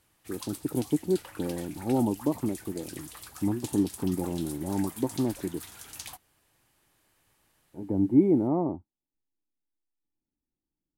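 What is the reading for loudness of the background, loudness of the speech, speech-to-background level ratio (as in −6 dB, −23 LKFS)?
−43.0 LKFS, −29.0 LKFS, 14.0 dB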